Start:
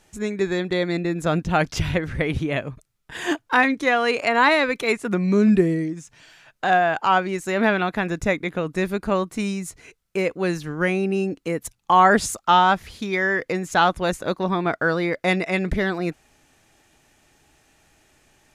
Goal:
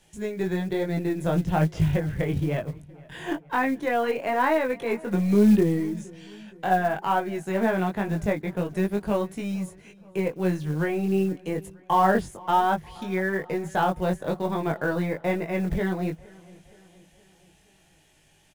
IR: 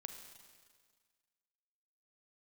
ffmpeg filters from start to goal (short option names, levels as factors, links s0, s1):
-filter_complex "[0:a]equalizer=f=160:t=o:w=0.33:g=8,equalizer=f=250:t=o:w=0.33:g=-4,equalizer=f=1250:t=o:w=0.33:g=-8,equalizer=f=3150:t=o:w=0.33:g=6,equalizer=f=10000:t=o:w=0.33:g=6,acrossover=split=260|1700[s0][s1][s2];[s2]acompressor=threshold=0.00631:ratio=6[s3];[s0][s1][s3]amix=inputs=3:normalize=0,aeval=exprs='0.531*(cos(1*acos(clip(val(0)/0.531,-1,1)))-cos(1*PI/2))+0.00841*(cos(8*acos(clip(val(0)/0.531,-1,1)))-cos(8*PI/2))':c=same,flanger=delay=19:depth=2.8:speed=1.1,acrusher=bits=7:mode=log:mix=0:aa=0.000001,asplit=2[s4][s5];[s5]adelay=469,lowpass=f=4500:p=1,volume=0.0708,asplit=2[s6][s7];[s7]adelay=469,lowpass=f=4500:p=1,volume=0.54,asplit=2[s8][s9];[s9]adelay=469,lowpass=f=4500:p=1,volume=0.54,asplit=2[s10][s11];[s11]adelay=469,lowpass=f=4500:p=1,volume=0.54[s12];[s4][s6][s8][s10][s12]amix=inputs=5:normalize=0"